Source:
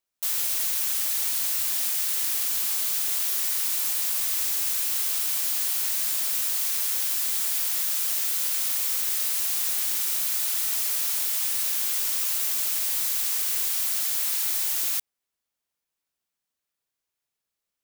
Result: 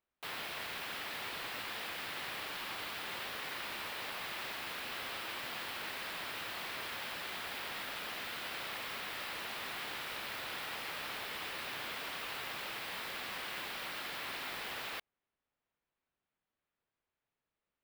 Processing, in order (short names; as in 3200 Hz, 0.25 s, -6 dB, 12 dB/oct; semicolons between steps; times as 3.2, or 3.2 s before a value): air absorption 440 m; gain +4 dB